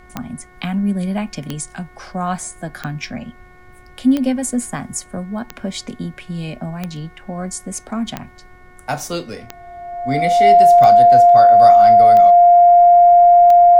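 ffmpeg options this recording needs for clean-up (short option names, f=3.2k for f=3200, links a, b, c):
-af "adeclick=t=4,bandreject=f=364.1:t=h:w=4,bandreject=f=728.2:t=h:w=4,bandreject=f=1.0923k:t=h:w=4,bandreject=f=1.4564k:t=h:w=4,bandreject=f=1.8205k:t=h:w=4,bandreject=f=2.1846k:t=h:w=4,bandreject=f=700:w=30,agate=range=-21dB:threshold=-35dB"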